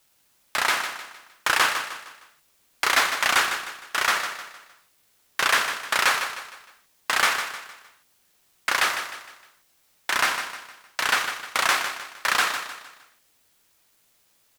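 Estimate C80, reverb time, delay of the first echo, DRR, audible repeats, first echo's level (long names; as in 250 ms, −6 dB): no reverb audible, no reverb audible, 154 ms, no reverb audible, 4, −9.0 dB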